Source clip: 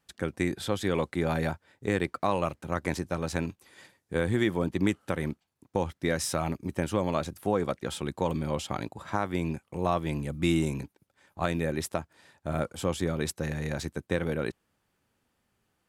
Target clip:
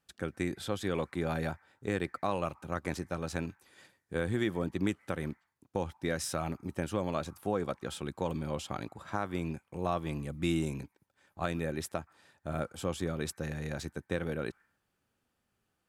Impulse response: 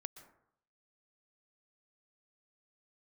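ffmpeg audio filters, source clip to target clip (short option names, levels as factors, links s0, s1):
-filter_complex "[0:a]asplit=2[s0][s1];[s1]asuperpass=centerf=1400:order=12:qfactor=0.91[s2];[1:a]atrim=start_sample=2205,afade=t=out:st=0.4:d=0.01,atrim=end_sample=18081[s3];[s2][s3]afir=irnorm=-1:irlink=0,volume=0.335[s4];[s0][s4]amix=inputs=2:normalize=0,volume=0.562"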